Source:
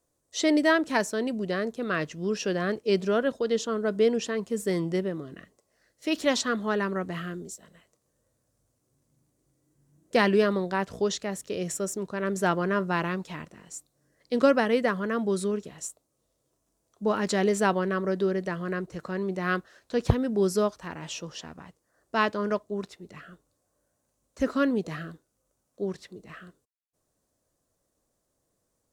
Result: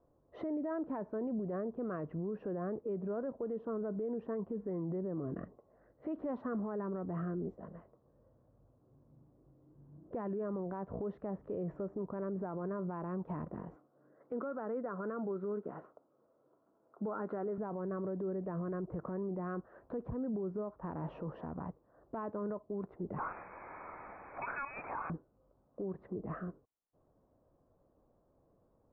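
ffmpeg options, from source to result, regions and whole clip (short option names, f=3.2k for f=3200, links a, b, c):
-filter_complex "[0:a]asettb=1/sr,asplit=3[a][b][c];[a]atrim=end=13.764[d];[b]atrim=start=13.76:end=17.58,asetpts=PTS-STARTPTS,afade=t=in:d=0.004:c=qsin,afade=t=out:st=3.816:d=0.004:c=qsin,highpass=250,lowpass=3.1k,equalizer=f=1.4k:w=4.5:g=10.5[e];[c]atrim=start=17.576[f];[d][e]acrossfade=d=0.004:c1=hsin:c2=qsin[g];[g][f]acrossfade=d=0.004:c1=qsin:c2=hsin,asettb=1/sr,asplit=3[h][i][j];[h]atrim=end=23.184[k];[i]atrim=start=23.18:end=25.1,asetpts=PTS-STARTPTS,afade=t=in:d=0.004:c=qsin,afade=t=out:st=1.916:d=0.004:c=qsin,aeval=exprs='val(0)+0.5*0.02*sgn(val(0))':c=same,highpass=f=280:w=0.5412,highpass=f=280:w=1.3066,lowpass=f=2.4k:t=q:w=0.5098,lowpass=f=2.4k:t=q:w=0.6013,lowpass=f=2.4k:t=q:w=0.9,lowpass=f=2.4k:t=q:w=2.563,afreqshift=-2800[l];[j]atrim=start=25.096[m];[k][l]acrossfade=d=0.004:c1=hsin:c2=qsin[n];[n][m]acrossfade=d=0.004:c1=qsin:c2=hsin,lowpass=f=1.1k:w=0.5412,lowpass=f=1.1k:w=1.3066,acompressor=threshold=-38dB:ratio=5,alimiter=level_in=14.5dB:limit=-24dB:level=0:latency=1:release=22,volume=-14.5dB,volume=7.5dB"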